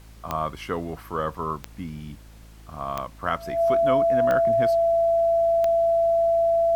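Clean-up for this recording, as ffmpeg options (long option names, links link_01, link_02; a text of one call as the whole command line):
ffmpeg -i in.wav -af "adeclick=threshold=4,bandreject=frequency=54.3:width_type=h:width=4,bandreject=frequency=108.6:width_type=h:width=4,bandreject=frequency=162.9:width_type=h:width=4,bandreject=frequency=217.2:width_type=h:width=4,bandreject=frequency=271.5:width_type=h:width=4,bandreject=frequency=325.8:width_type=h:width=4,bandreject=frequency=670:width=30,agate=range=-21dB:threshold=-38dB" out.wav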